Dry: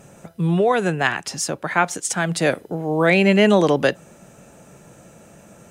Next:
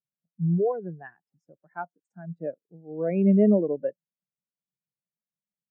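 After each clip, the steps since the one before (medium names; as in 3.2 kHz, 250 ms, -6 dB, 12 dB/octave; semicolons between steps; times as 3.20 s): local Wiener filter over 9 samples; treble shelf 3.5 kHz -10 dB; spectral contrast expander 2.5:1; trim -5.5 dB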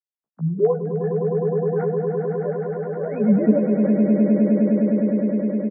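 formants replaced by sine waves; doubling 14 ms -4.5 dB; echo with a slow build-up 103 ms, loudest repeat 8, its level -7 dB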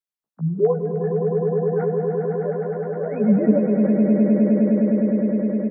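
reverberation RT60 2.7 s, pre-delay 110 ms, DRR 13 dB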